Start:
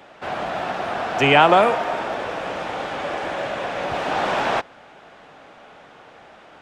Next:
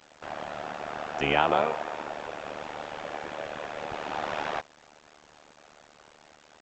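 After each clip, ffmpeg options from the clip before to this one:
-af "tremolo=f=75:d=0.947,aresample=16000,acrusher=bits=7:mix=0:aa=0.000001,aresample=44100,volume=-6dB"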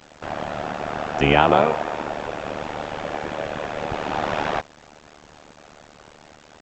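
-af "lowshelf=f=300:g=9,volume=6dB"

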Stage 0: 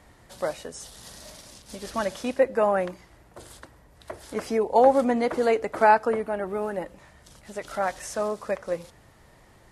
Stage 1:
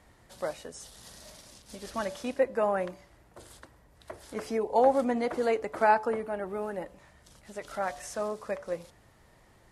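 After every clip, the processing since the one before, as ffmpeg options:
-af "bandreject=f=144:t=h:w=4,bandreject=f=288:t=h:w=4,bandreject=f=432:t=h:w=4,bandreject=f=576:t=h:w=4,bandreject=f=720:t=h:w=4,bandreject=f=864:t=h:w=4,bandreject=f=1.008k:t=h:w=4,bandreject=f=1.152k:t=h:w=4,volume=-5dB"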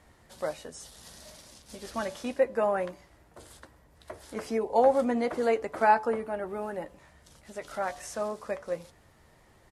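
-filter_complex "[0:a]asplit=2[a][b];[b]adelay=13,volume=-11dB[c];[a][c]amix=inputs=2:normalize=0"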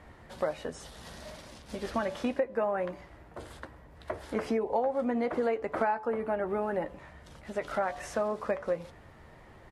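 -af "acompressor=threshold=-33dB:ratio=8,bass=f=250:g=0,treble=f=4k:g=-13,volume=7dB"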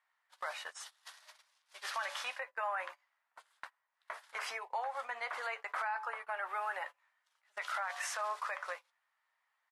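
-af "highpass=f=1k:w=0.5412,highpass=f=1k:w=1.3066,agate=range=-26dB:threshold=-48dB:ratio=16:detection=peak,alimiter=level_in=9dB:limit=-24dB:level=0:latency=1:release=22,volume=-9dB,volume=5dB"

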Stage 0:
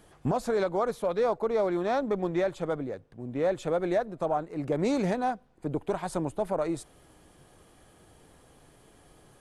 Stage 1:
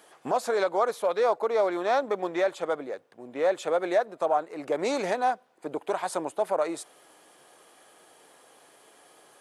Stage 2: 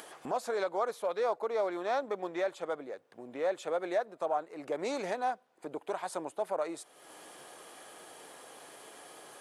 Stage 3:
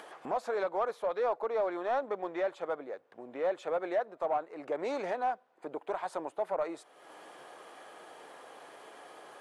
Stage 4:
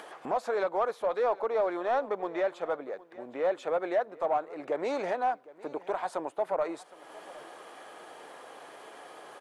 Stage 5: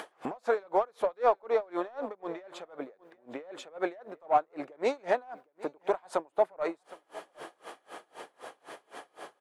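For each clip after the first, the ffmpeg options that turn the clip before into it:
-af "highpass=500,volume=5dB"
-af "acompressor=mode=upward:threshold=-32dB:ratio=2.5,volume=-7dB"
-filter_complex "[0:a]asplit=2[a][b];[b]highpass=f=720:p=1,volume=10dB,asoftclip=type=tanh:threshold=-19.5dB[c];[a][c]amix=inputs=2:normalize=0,lowpass=f=1.2k:p=1,volume=-6dB"
-af "aecho=1:1:762:0.1,volume=3dB"
-af "aeval=exprs='val(0)*pow(10,-31*(0.5-0.5*cos(2*PI*3.9*n/s))/20)':c=same,volume=6dB"

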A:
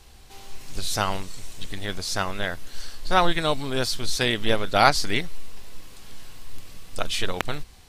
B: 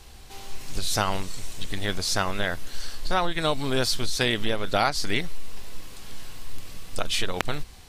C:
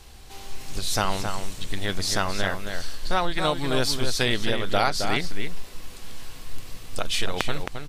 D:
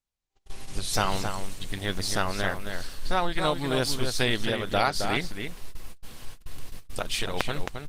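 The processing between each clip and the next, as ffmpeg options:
-af "acompressor=threshold=-21dB:ratio=10,volume=3dB"
-filter_complex "[0:a]asplit=2[a][b];[b]adelay=268.2,volume=-6dB,highshelf=f=4k:g=-6.04[c];[a][c]amix=inputs=2:normalize=0"
-af "agate=range=-43dB:threshold=-31dB:ratio=16:detection=peak,volume=-1dB" -ar 48000 -c:a libopus -b:a 24k

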